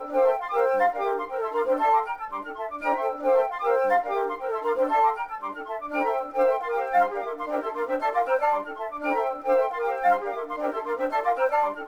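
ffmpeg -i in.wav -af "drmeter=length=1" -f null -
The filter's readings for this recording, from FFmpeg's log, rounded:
Channel 1: DR: 9.4
Overall DR: 9.4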